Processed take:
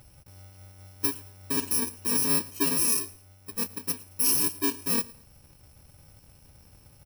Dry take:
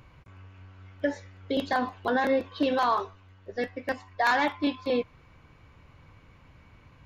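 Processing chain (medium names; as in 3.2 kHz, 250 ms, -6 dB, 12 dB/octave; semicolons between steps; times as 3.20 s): bit-reversed sample order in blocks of 64 samples; feedback delay 112 ms, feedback 31%, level -22 dB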